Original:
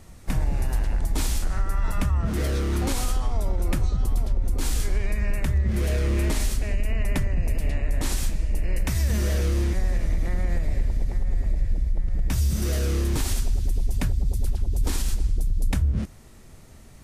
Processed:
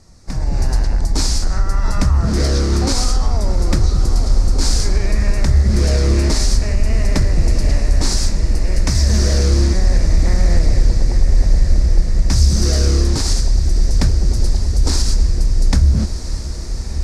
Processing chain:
high shelf with overshoot 3,900 Hz +7.5 dB, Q 3
automatic gain control gain up to 13 dB
high-frequency loss of the air 82 metres
feedback delay with all-pass diffusion 1,337 ms, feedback 75%, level −12 dB
highs frequency-modulated by the lows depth 0.25 ms
level −1 dB

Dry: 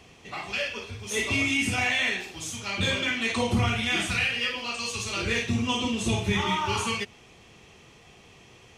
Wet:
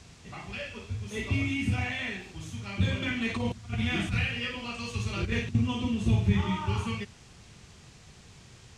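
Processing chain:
bass and treble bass +14 dB, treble −8 dB
0:03.02–0:05.55: compressor whose output falls as the input rises −21 dBFS, ratio −0.5
noise in a band 490–7,600 Hz −50 dBFS
level −8 dB

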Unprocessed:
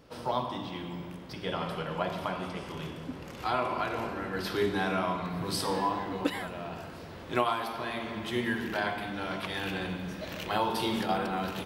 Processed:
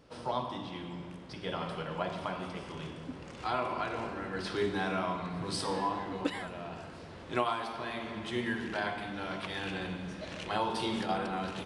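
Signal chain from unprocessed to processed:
downsampling to 22,050 Hz
level −3 dB

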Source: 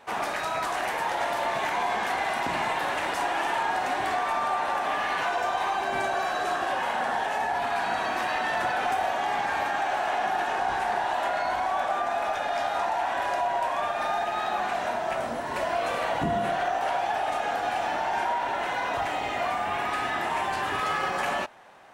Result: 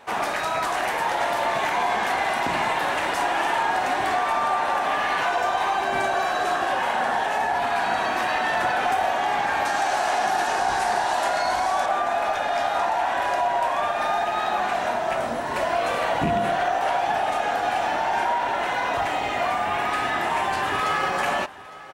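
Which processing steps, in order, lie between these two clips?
loose part that buzzes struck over −30 dBFS, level −27 dBFS
0:09.65–0:11.86: flat-topped bell 7,000 Hz +9 dB
single-tap delay 859 ms −19 dB
level +4 dB

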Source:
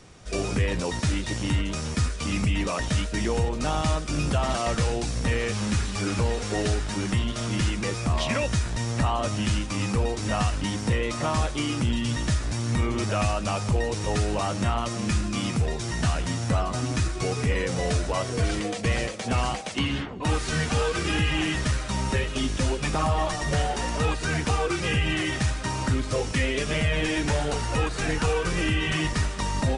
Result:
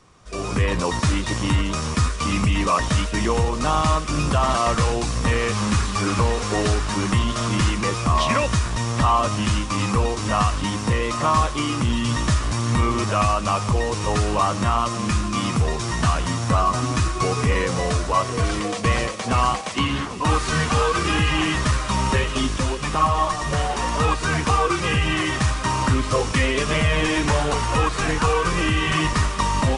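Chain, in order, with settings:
parametric band 1,100 Hz +12 dB 0.35 octaves
automatic gain control gain up to 11 dB
delay with a high-pass on its return 790 ms, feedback 78%, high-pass 2,700 Hz, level −11.5 dB
level −5.5 dB

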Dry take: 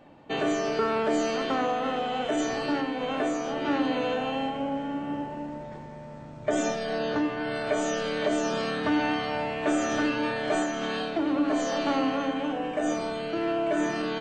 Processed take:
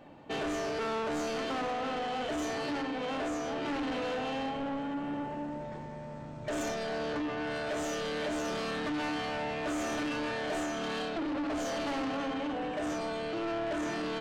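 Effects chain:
soft clipping −31 dBFS, distortion −8 dB

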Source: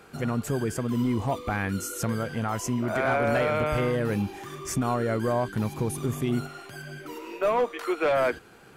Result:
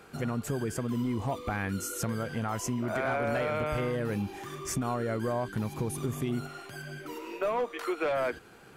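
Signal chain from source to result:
downward compressor 2.5 to 1, threshold −27 dBFS, peak gain reduction 4.5 dB
level −1.5 dB

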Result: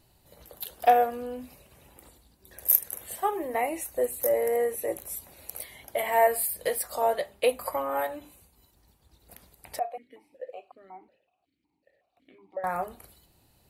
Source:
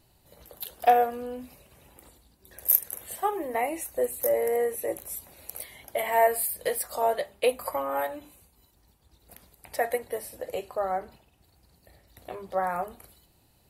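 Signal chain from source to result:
0:09.79–0:12.64: formant filter that steps through the vowels 5.4 Hz

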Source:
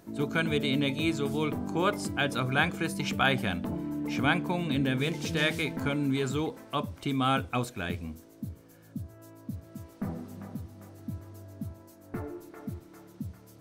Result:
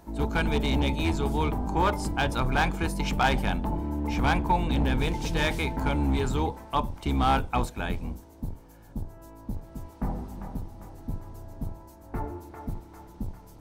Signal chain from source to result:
sub-octave generator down 2 octaves, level +4 dB
gain into a clipping stage and back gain 20 dB
parametric band 880 Hz +13.5 dB 0.41 octaves

